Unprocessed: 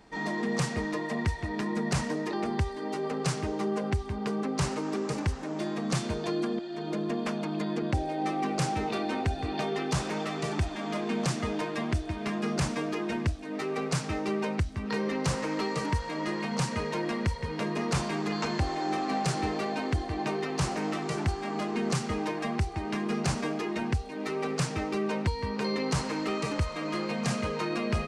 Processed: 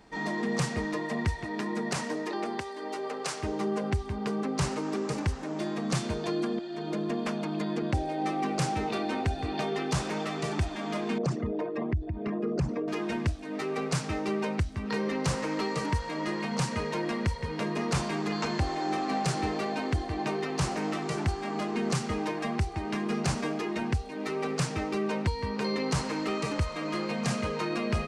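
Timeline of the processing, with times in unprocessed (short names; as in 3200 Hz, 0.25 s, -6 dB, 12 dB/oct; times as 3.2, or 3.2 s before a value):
1.43–3.42 HPF 170 Hz -> 480 Hz
11.18–12.88 formant sharpening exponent 2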